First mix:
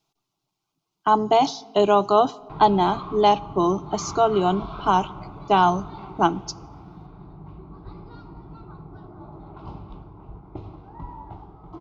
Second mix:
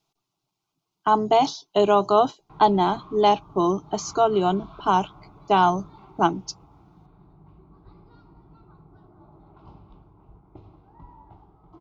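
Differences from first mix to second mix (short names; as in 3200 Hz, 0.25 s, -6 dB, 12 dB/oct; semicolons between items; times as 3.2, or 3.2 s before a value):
speech: send off; background -10.0 dB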